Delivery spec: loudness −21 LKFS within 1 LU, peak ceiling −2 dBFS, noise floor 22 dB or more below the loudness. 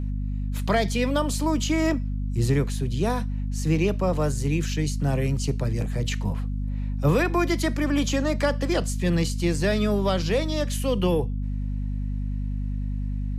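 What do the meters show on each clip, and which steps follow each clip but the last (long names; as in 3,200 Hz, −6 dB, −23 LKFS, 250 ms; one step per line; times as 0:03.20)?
mains hum 50 Hz; hum harmonics up to 250 Hz; level of the hum −25 dBFS; integrated loudness −25.5 LKFS; sample peak −9.5 dBFS; target loudness −21.0 LKFS
→ mains-hum notches 50/100/150/200/250 Hz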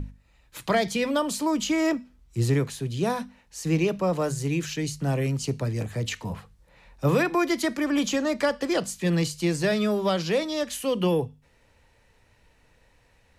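mains hum none found; integrated loudness −26.0 LKFS; sample peak −11.5 dBFS; target loudness −21.0 LKFS
→ level +5 dB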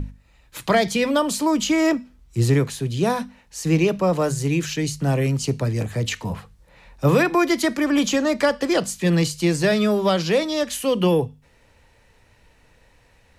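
integrated loudness −21.0 LKFS; sample peak −6.5 dBFS; background noise floor −57 dBFS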